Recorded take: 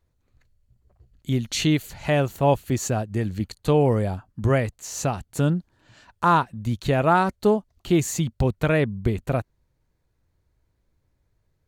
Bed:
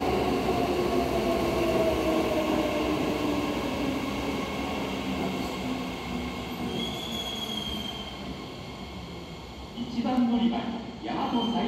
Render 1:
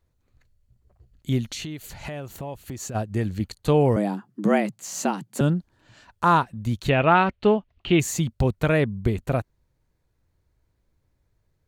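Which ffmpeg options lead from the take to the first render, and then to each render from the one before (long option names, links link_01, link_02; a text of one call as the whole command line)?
ffmpeg -i in.wav -filter_complex "[0:a]asplit=3[link_01][link_02][link_03];[link_01]afade=type=out:start_time=1.5:duration=0.02[link_04];[link_02]acompressor=threshold=-30dB:ratio=8:attack=3.2:release=140:knee=1:detection=peak,afade=type=in:start_time=1.5:duration=0.02,afade=type=out:start_time=2.94:duration=0.02[link_05];[link_03]afade=type=in:start_time=2.94:duration=0.02[link_06];[link_04][link_05][link_06]amix=inputs=3:normalize=0,asettb=1/sr,asplit=3[link_07][link_08][link_09];[link_07]atrim=end=3.964[link_10];[link_08]atrim=start=3.96:end=5.41,asetpts=PTS-STARTPTS,afade=type=in:duration=0.004:curve=qsin,afade=type=out:start_time=1.446:duration=0.004:curve=qsin,afreqshift=99[link_11];[link_09]atrim=start=5.406[link_12];[link_10][link_11]acrossfade=duration=0.004:curve1=hsin:curve2=qsin[link_13];[link_13][link_12]acrossfade=duration=0.004:curve1=qsin:curve2=hsin,asettb=1/sr,asplit=3[link_14][link_15][link_16];[link_14]atrim=end=6.894[link_17];[link_15]atrim=start=6.89:end=8,asetpts=PTS-STARTPTS,afade=type=in:duration=0.004:curve=qsin,afade=type=out:start_time=1.106:duration=0.004:curve=qsin,lowpass=frequency=2800:width_type=q:width=2.9[link_18];[link_16]atrim=start=7.996[link_19];[link_17][link_18]acrossfade=duration=0.004:curve1=hsin:curve2=qsin[link_20];[link_20][link_19]acrossfade=duration=0.004:curve1=qsin:curve2=hsin" out.wav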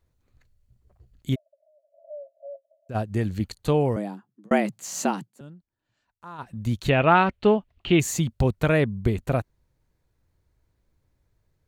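ffmpeg -i in.wav -filter_complex "[0:a]asplit=3[link_01][link_02][link_03];[link_01]afade=type=out:start_time=1.34:duration=0.02[link_04];[link_02]asuperpass=centerf=610:order=20:qfactor=4.5,afade=type=in:start_time=1.34:duration=0.02,afade=type=out:start_time=2.89:duration=0.02[link_05];[link_03]afade=type=in:start_time=2.89:duration=0.02[link_06];[link_04][link_05][link_06]amix=inputs=3:normalize=0,asplit=4[link_07][link_08][link_09][link_10];[link_07]atrim=end=4.51,asetpts=PTS-STARTPTS,afade=type=out:start_time=3.5:duration=1.01[link_11];[link_08]atrim=start=4.51:end=5.32,asetpts=PTS-STARTPTS,afade=type=in:duration=0.004:curve=hsin,afade=type=out:start_time=0.68:duration=0.13:silence=0.0707946[link_12];[link_09]atrim=start=5.32:end=6.38,asetpts=PTS-STARTPTS,volume=-23dB[link_13];[link_10]atrim=start=6.38,asetpts=PTS-STARTPTS,afade=type=in:duration=0.13:silence=0.0707946[link_14];[link_11][link_12][link_13][link_14]concat=n=4:v=0:a=1" out.wav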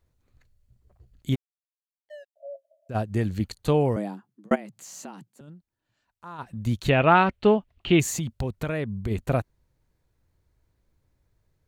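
ffmpeg -i in.wav -filter_complex "[0:a]asettb=1/sr,asplit=3[link_01][link_02][link_03];[link_01]atrim=end=1.344[link_04];[link_02]atrim=start=1.34:end=2.36,asetpts=PTS-STARTPTS,afade=type=in:duration=0.004:curve=qsin,afade=type=out:start_time=1.016:duration=0.004:curve=qsin,aeval=exprs='sgn(val(0))*max(abs(val(0))-0.0075,0)':channel_layout=same[link_05];[link_03]atrim=start=2.356[link_06];[link_04][link_05]acrossfade=duration=0.004:curve1=hsin:curve2=qsin[link_07];[link_07][link_06]acrossfade=duration=0.004:curve1=qsin:curve2=hsin,asplit=3[link_08][link_09][link_10];[link_08]afade=type=out:start_time=4.54:duration=0.02[link_11];[link_09]acompressor=threshold=-44dB:ratio=2.5:attack=3.2:release=140:knee=1:detection=peak,afade=type=in:start_time=4.54:duration=0.02,afade=type=out:start_time=5.47:duration=0.02[link_12];[link_10]afade=type=in:start_time=5.47:duration=0.02[link_13];[link_11][link_12][link_13]amix=inputs=3:normalize=0,asplit=3[link_14][link_15][link_16];[link_14]afade=type=out:start_time=8.09:duration=0.02[link_17];[link_15]acompressor=threshold=-26dB:ratio=3:attack=3.2:release=140:knee=1:detection=peak,afade=type=in:start_time=8.09:duration=0.02,afade=type=out:start_time=9.1:duration=0.02[link_18];[link_16]afade=type=in:start_time=9.1:duration=0.02[link_19];[link_17][link_18][link_19]amix=inputs=3:normalize=0" out.wav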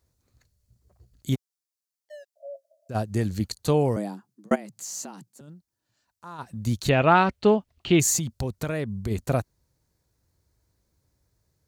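ffmpeg -i in.wav -af "highpass=49,highshelf=frequency=3900:width_type=q:width=1.5:gain=6.5" out.wav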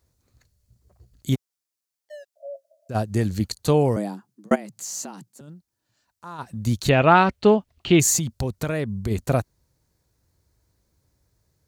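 ffmpeg -i in.wav -af "volume=3dB" out.wav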